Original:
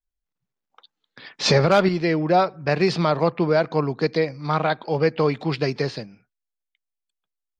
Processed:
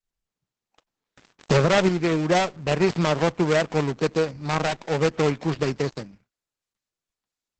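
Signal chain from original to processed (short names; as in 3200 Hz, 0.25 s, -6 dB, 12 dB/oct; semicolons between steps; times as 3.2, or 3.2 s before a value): switching dead time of 0.3 ms; Opus 12 kbps 48000 Hz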